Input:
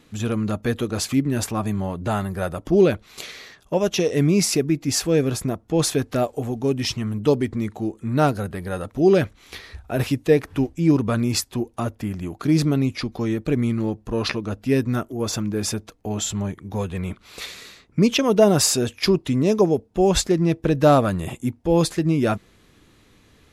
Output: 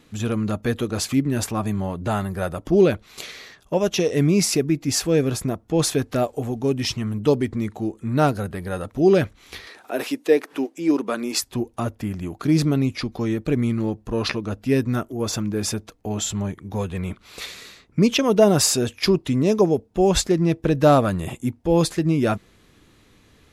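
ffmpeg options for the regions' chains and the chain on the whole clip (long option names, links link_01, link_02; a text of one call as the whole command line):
ffmpeg -i in.wav -filter_complex "[0:a]asettb=1/sr,asplit=3[link_01][link_02][link_03];[link_01]atrim=end=9.674[link_04];[link_02]atrim=start=9.67:end=11.42,asetpts=PTS-STARTPTS,afade=type=in:duration=0.004:curve=qsin,afade=type=out:start_time=1.746:duration=0.004:curve=qsin,highpass=frequency=270:width=0.5412,highpass=frequency=270:width=1.3066,acompressor=mode=upward:threshold=-35dB:ratio=2.5:attack=3.2:release=140:knee=2.83:detection=peak[link_05];[link_03]atrim=start=11.416[link_06];[link_04][link_05]acrossfade=duration=0.004:curve1=hsin:curve2=qsin[link_07];[link_07][link_06]acrossfade=duration=0.004:curve1=qsin:curve2=hsin" out.wav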